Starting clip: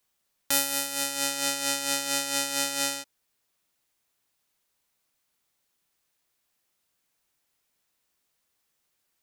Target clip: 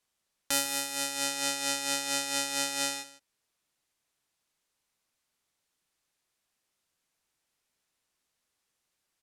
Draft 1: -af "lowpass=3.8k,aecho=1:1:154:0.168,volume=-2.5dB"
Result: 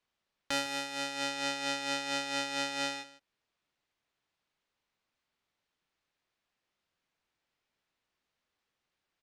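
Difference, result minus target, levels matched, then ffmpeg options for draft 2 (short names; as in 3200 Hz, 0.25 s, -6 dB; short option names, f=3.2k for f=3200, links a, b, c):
8000 Hz band -7.5 dB
-af "lowpass=11k,aecho=1:1:154:0.168,volume=-2.5dB"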